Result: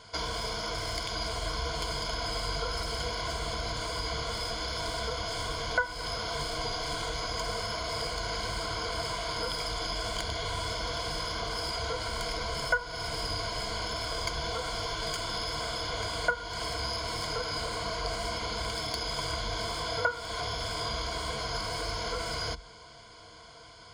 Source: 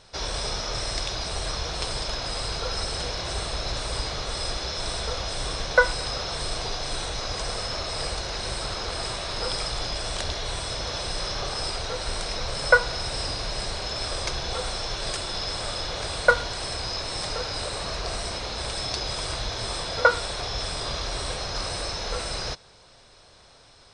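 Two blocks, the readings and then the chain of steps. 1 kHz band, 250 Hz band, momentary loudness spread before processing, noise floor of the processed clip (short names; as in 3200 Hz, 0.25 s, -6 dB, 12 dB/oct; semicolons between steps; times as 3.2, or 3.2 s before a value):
-3.0 dB, -2.5 dB, 8 LU, -50 dBFS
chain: tracing distortion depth 0.027 ms; HPF 43 Hz; bell 1100 Hz +5.5 dB 0.29 oct; compressor 4:1, threshold -33 dBFS, peak gain reduction 19 dB; ripple EQ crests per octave 1.8, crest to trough 15 dB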